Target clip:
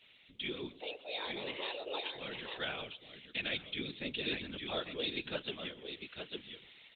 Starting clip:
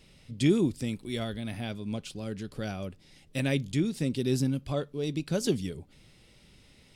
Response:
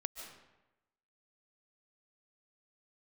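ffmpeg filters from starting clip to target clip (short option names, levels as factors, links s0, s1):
-filter_complex "[0:a]asplit=3[s0][s1][s2];[s0]afade=t=out:st=0.71:d=0.02[s3];[s1]afreqshift=290,afade=t=in:st=0.71:d=0.02,afade=t=out:st=2.04:d=0.02[s4];[s2]afade=t=in:st=2.04:d=0.02[s5];[s3][s4][s5]amix=inputs=3:normalize=0,highpass=40,aderivative,asplit=2[s6][s7];[s7]aecho=0:1:852:0.355[s8];[s6][s8]amix=inputs=2:normalize=0,acompressor=threshold=0.00398:ratio=2,aresample=8000,aresample=44100,asplit=3[s9][s10][s11];[s9]afade=t=out:st=2.8:d=0.02[s12];[s10]equalizer=f=1000:t=o:w=2.1:g=-5,afade=t=in:st=2.8:d=0.02,afade=t=out:st=4:d=0.02[s13];[s11]afade=t=in:st=4:d=0.02[s14];[s12][s13][s14]amix=inputs=3:normalize=0,asplit=2[s15][s16];[s16]aecho=0:1:133|266:0.112|0.0191[s17];[s15][s17]amix=inputs=2:normalize=0,dynaudnorm=f=420:g=7:m=1.78,afftfilt=real='hypot(re,im)*cos(2*PI*random(0))':imag='hypot(re,im)*sin(2*PI*random(1))':win_size=512:overlap=0.75,volume=7.94" -ar 48000 -c:a libopus -b:a 20k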